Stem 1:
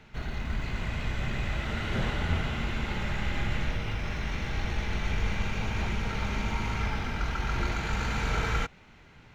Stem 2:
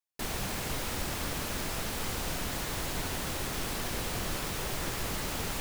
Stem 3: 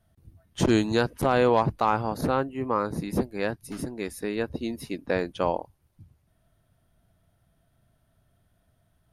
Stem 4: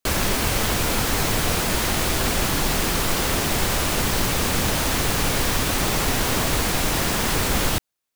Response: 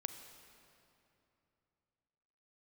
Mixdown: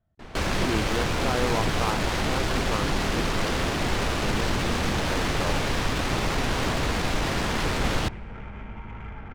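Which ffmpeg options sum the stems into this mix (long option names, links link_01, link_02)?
-filter_complex "[0:a]afwtdn=0.0126,acompressor=threshold=-37dB:ratio=6,adelay=2250,volume=0dB,asplit=2[link_01][link_02];[link_02]volume=-7.5dB[link_03];[1:a]volume=-6dB[link_04];[2:a]volume=-7dB[link_05];[3:a]adelay=300,volume=-4.5dB,asplit=2[link_06][link_07];[link_07]volume=-10.5dB[link_08];[4:a]atrim=start_sample=2205[link_09];[link_03][link_08]amix=inputs=2:normalize=0[link_10];[link_10][link_09]afir=irnorm=-1:irlink=0[link_11];[link_01][link_04][link_05][link_06][link_11]amix=inputs=5:normalize=0,adynamicsmooth=sensitivity=3.5:basefreq=2600"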